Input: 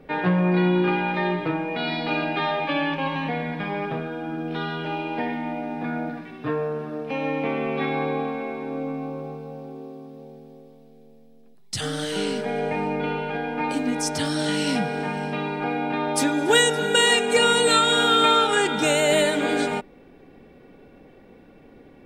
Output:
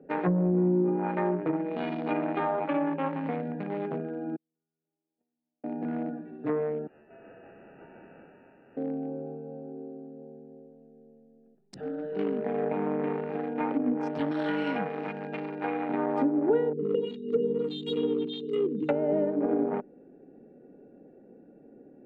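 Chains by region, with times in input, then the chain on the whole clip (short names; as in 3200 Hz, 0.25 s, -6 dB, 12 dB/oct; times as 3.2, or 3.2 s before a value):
4.36–5.64 median filter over 9 samples + gate -20 dBFS, range -57 dB + low shelf 130 Hz +11 dB
6.87–8.77 half-waves squared off + differentiator + inverted band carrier 3100 Hz
11.74–12.19 LPF 1500 Hz 6 dB/oct + bell 110 Hz -8.5 dB 0.71 oct + notches 50/100/150/200/250/300 Hz
14.31–15.89 tilt +2.5 dB/oct + comb 6.1 ms, depth 35%
16.73–18.89 phaser stages 12, 1.7 Hz, lowest notch 470–1700 Hz + brick-wall FIR band-stop 550–2800 Hz
whole clip: Wiener smoothing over 41 samples; three-band isolator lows -22 dB, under 170 Hz, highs -17 dB, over 2800 Hz; treble ducked by the level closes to 440 Hz, closed at -20 dBFS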